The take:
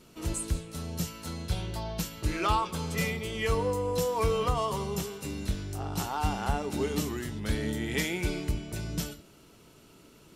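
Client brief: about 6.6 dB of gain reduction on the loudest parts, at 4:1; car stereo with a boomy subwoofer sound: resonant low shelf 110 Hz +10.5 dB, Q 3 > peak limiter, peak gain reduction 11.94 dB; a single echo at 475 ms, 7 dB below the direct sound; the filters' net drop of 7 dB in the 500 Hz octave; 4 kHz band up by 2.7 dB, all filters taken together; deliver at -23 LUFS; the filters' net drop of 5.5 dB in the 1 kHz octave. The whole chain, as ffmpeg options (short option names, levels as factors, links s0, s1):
-af "equalizer=f=500:t=o:g=-6.5,equalizer=f=1000:t=o:g=-5,equalizer=f=4000:t=o:g=4,acompressor=threshold=0.0282:ratio=4,lowshelf=f=110:t=q:w=3:g=10.5,aecho=1:1:475:0.447,volume=2.66,alimiter=limit=0.224:level=0:latency=1"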